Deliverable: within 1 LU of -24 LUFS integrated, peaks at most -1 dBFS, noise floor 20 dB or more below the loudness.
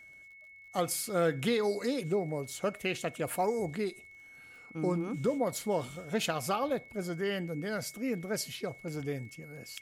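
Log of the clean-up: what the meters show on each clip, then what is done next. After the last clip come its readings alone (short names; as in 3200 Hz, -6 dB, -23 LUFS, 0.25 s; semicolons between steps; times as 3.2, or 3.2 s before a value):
ticks 27/s; steady tone 2200 Hz; tone level -51 dBFS; loudness -33.5 LUFS; peak -18.5 dBFS; loudness target -24.0 LUFS
-> de-click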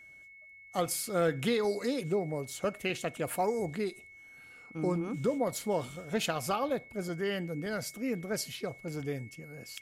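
ticks 0.20/s; steady tone 2200 Hz; tone level -51 dBFS
-> notch 2200 Hz, Q 30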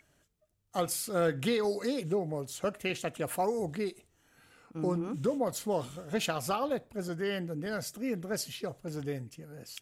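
steady tone none; loudness -33.5 LUFS; peak -18.5 dBFS; loudness target -24.0 LUFS
-> gain +9.5 dB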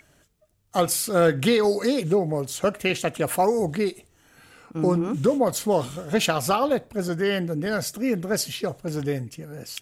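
loudness -24.0 LUFS; peak -9.0 dBFS; noise floor -61 dBFS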